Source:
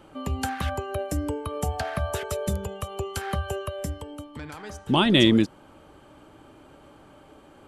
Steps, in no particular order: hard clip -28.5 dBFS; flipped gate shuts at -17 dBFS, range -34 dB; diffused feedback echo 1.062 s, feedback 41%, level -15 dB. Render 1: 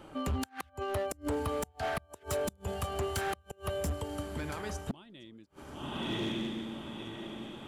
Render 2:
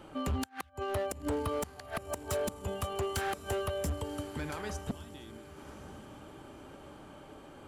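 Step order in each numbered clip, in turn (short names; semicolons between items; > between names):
diffused feedback echo > flipped gate > hard clip; flipped gate > diffused feedback echo > hard clip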